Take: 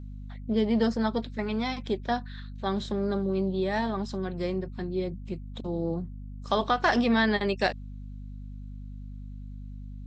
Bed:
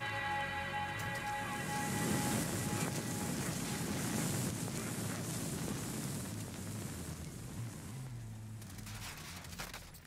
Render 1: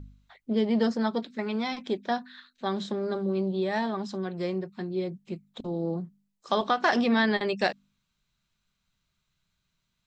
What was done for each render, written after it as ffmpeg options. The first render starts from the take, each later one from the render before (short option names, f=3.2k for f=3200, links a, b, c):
-af "bandreject=f=50:t=h:w=4,bandreject=f=100:t=h:w=4,bandreject=f=150:t=h:w=4,bandreject=f=200:t=h:w=4,bandreject=f=250:t=h:w=4"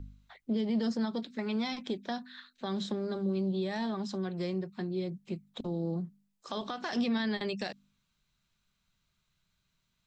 -filter_complex "[0:a]alimiter=limit=-20dB:level=0:latency=1:release=45,acrossover=split=250|3000[a][b][c];[b]acompressor=threshold=-39dB:ratio=2.5[d];[a][d][c]amix=inputs=3:normalize=0"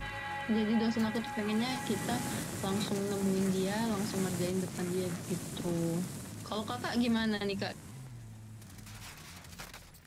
-filter_complex "[1:a]volume=-1.5dB[a];[0:a][a]amix=inputs=2:normalize=0"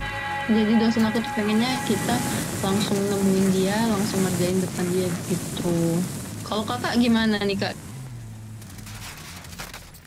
-af "volume=10.5dB"